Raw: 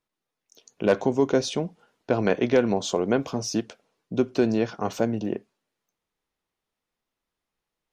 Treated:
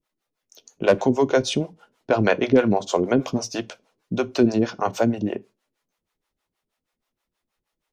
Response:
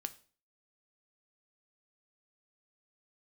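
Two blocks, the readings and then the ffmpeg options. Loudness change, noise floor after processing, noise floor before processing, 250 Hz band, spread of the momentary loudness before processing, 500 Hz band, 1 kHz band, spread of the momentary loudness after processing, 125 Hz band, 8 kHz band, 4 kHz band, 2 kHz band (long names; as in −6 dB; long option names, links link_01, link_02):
+3.5 dB, −83 dBFS, below −85 dBFS, +3.5 dB, 9 LU, +2.5 dB, +5.0 dB, 12 LU, +3.5 dB, +1.0 dB, +3.0 dB, +4.5 dB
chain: -filter_complex "[0:a]acrossover=split=440[link_01][link_02];[link_01]aeval=exprs='val(0)*(1-1/2+1/2*cos(2*PI*6.3*n/s))':channel_layout=same[link_03];[link_02]aeval=exprs='val(0)*(1-1/2-1/2*cos(2*PI*6.3*n/s))':channel_layout=same[link_04];[link_03][link_04]amix=inputs=2:normalize=0,asplit=2[link_05][link_06];[1:a]atrim=start_sample=2205,asetrate=79380,aresample=44100[link_07];[link_06][link_07]afir=irnorm=-1:irlink=0,volume=8dB[link_08];[link_05][link_08]amix=inputs=2:normalize=0,volume=2dB"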